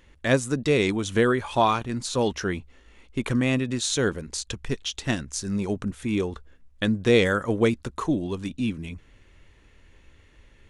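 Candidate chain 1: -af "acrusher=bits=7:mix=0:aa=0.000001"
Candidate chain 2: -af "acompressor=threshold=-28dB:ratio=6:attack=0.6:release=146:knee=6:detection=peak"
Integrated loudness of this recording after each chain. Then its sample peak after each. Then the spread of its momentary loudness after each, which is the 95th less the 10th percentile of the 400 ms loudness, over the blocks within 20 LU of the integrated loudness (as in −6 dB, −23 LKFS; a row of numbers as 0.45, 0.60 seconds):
−25.5, −35.0 LKFS; −6.5, −19.5 dBFS; 10, 6 LU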